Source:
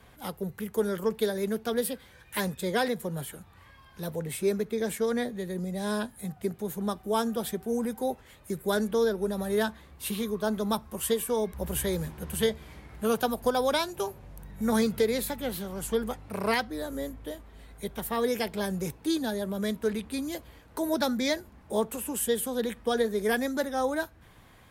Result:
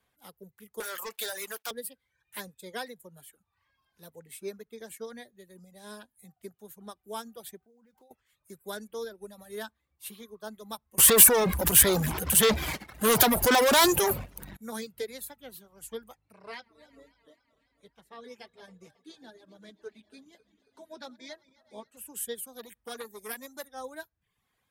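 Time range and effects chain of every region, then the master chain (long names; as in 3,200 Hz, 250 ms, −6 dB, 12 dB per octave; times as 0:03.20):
0:00.80–0:01.71: high-pass filter 890 Hz + leveller curve on the samples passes 5
0:07.58–0:08.11: running median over 9 samples + downward compressor 16 to 1, threshold −36 dBFS
0:10.98–0:14.57: transient designer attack −3 dB, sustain +11 dB + leveller curve on the samples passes 5 + single-tap delay 308 ms −23.5 dB
0:16.33–0:21.97: feedback delay that plays each chunk backwards 136 ms, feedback 79%, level −12.5 dB + low-pass filter 5,500 Hz + flanger 1.2 Hz, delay 6 ms, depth 2.2 ms, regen −40%
0:22.47–0:23.68: high-shelf EQ 8,300 Hz +11 dB + saturating transformer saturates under 940 Hz
whole clip: reverb reduction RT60 0.78 s; spectral tilt +1.5 dB per octave; expander for the loud parts 1.5 to 1, over −45 dBFS; level −1.5 dB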